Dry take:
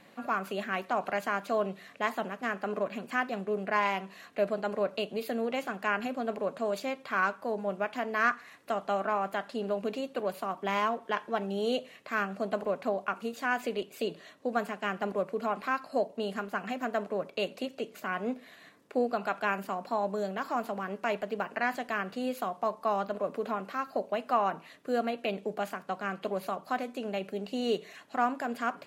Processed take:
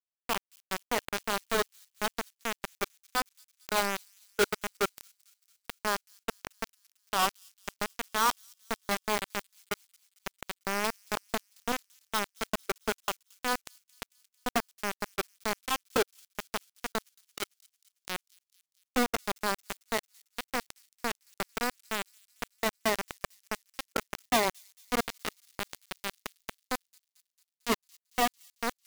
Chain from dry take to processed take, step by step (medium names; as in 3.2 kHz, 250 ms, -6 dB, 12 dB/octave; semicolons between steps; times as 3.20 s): spectral contrast enhancement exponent 1.6; bit crusher 4-bit; formant shift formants -4 st; on a send: feedback echo behind a high-pass 224 ms, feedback 64%, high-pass 5.4 kHz, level -20 dB